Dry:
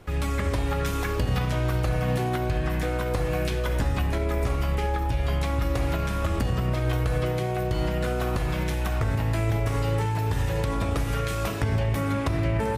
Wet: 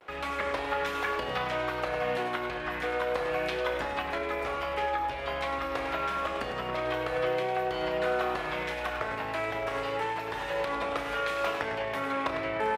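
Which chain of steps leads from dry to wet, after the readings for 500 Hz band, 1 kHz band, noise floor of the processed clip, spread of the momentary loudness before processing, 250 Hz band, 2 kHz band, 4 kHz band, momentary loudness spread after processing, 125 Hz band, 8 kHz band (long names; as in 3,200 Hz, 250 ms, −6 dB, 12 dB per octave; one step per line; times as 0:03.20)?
−1.0 dB, +1.5 dB, −35 dBFS, 2 LU, −9.5 dB, +2.0 dB, −1.0 dB, 3 LU, −21.5 dB, −11.0 dB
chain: parametric band 87 Hz −11.5 dB 1.1 octaves
pitch vibrato 0.3 Hz 27 cents
high-pass filter 49 Hz
three-way crossover with the lows and the highs turned down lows −17 dB, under 430 Hz, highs −16 dB, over 4,000 Hz
loudspeakers that aren't time-aligned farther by 11 metres −11 dB, 35 metres −9 dB
level +1.5 dB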